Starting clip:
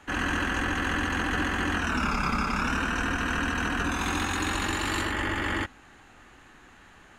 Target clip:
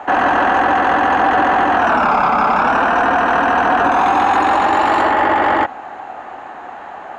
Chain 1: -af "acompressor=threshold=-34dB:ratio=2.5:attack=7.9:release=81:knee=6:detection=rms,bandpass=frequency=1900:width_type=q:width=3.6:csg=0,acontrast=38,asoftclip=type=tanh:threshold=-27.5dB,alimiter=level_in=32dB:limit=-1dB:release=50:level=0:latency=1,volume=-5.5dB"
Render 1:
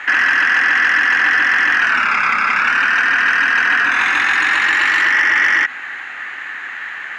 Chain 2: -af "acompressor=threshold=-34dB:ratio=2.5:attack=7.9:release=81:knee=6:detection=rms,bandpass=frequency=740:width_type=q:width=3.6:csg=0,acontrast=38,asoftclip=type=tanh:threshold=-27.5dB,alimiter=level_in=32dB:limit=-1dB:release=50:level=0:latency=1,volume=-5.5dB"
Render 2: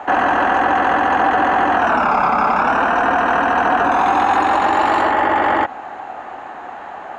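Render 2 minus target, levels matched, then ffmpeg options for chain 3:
downward compressor: peak gain reduction +4.5 dB
-af "acompressor=threshold=-26.5dB:ratio=2.5:attack=7.9:release=81:knee=6:detection=rms,bandpass=frequency=740:width_type=q:width=3.6:csg=0,acontrast=38,asoftclip=type=tanh:threshold=-27.5dB,alimiter=level_in=32dB:limit=-1dB:release=50:level=0:latency=1,volume=-5.5dB"

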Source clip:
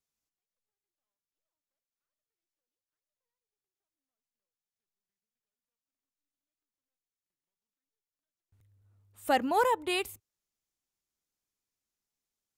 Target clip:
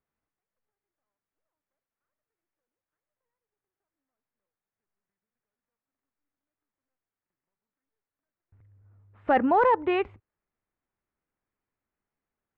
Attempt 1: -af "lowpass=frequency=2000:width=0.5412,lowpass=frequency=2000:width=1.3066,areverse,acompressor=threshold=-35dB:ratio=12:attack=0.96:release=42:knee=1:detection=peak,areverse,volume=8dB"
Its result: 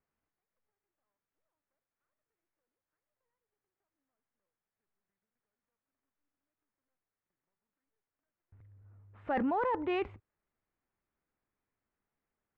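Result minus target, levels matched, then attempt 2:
downward compressor: peak gain reduction +11 dB
-af "lowpass=frequency=2000:width=0.5412,lowpass=frequency=2000:width=1.3066,areverse,acompressor=threshold=-23dB:ratio=12:attack=0.96:release=42:knee=1:detection=peak,areverse,volume=8dB"

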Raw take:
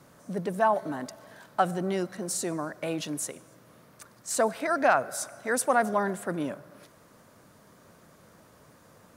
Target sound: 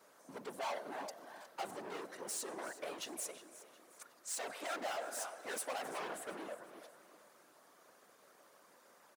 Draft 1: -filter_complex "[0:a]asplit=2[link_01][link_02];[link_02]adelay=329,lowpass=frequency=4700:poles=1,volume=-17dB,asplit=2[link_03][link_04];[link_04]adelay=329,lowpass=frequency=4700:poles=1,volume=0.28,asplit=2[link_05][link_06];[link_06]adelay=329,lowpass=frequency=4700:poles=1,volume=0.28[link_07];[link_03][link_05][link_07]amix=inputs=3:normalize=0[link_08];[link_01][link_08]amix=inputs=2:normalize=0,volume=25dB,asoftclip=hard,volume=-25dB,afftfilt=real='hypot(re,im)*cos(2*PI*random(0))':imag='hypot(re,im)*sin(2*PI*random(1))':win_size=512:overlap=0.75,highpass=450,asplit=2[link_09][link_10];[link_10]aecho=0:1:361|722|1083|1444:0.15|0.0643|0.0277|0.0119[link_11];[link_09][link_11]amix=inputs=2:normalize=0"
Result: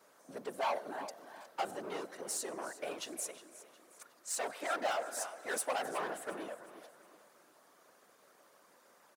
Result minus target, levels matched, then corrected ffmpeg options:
gain into a clipping stage and back: distortion −4 dB
-filter_complex "[0:a]asplit=2[link_01][link_02];[link_02]adelay=329,lowpass=frequency=4700:poles=1,volume=-17dB,asplit=2[link_03][link_04];[link_04]adelay=329,lowpass=frequency=4700:poles=1,volume=0.28,asplit=2[link_05][link_06];[link_06]adelay=329,lowpass=frequency=4700:poles=1,volume=0.28[link_07];[link_03][link_05][link_07]amix=inputs=3:normalize=0[link_08];[link_01][link_08]amix=inputs=2:normalize=0,volume=32dB,asoftclip=hard,volume=-32dB,afftfilt=real='hypot(re,im)*cos(2*PI*random(0))':imag='hypot(re,im)*sin(2*PI*random(1))':win_size=512:overlap=0.75,highpass=450,asplit=2[link_09][link_10];[link_10]aecho=0:1:361|722|1083|1444:0.15|0.0643|0.0277|0.0119[link_11];[link_09][link_11]amix=inputs=2:normalize=0"

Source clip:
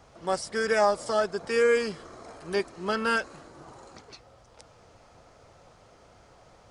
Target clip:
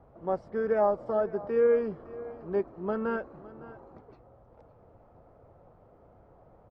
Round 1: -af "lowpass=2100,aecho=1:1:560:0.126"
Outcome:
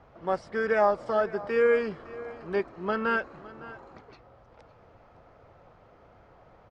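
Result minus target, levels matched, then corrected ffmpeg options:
2,000 Hz band +9.5 dB
-af "lowpass=800,aecho=1:1:560:0.126"

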